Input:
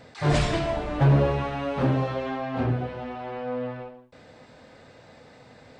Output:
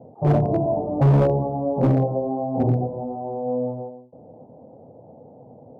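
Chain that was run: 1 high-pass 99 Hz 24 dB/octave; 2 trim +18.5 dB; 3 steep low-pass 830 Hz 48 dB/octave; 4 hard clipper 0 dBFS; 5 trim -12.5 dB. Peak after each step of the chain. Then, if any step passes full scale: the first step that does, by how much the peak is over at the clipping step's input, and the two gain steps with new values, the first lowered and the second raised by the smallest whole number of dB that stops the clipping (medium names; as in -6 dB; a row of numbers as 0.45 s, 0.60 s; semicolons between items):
-10.0 dBFS, +8.5 dBFS, +8.0 dBFS, 0.0 dBFS, -12.5 dBFS; step 2, 8.0 dB; step 2 +10.5 dB, step 5 -4.5 dB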